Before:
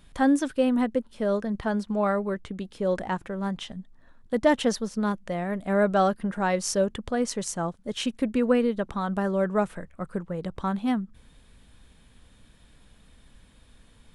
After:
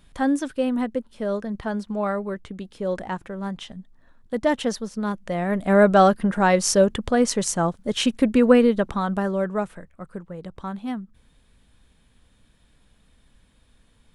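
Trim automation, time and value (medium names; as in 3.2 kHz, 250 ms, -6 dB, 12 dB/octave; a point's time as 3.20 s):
5.03 s -0.5 dB
5.59 s +7 dB
8.73 s +7 dB
9.90 s -4 dB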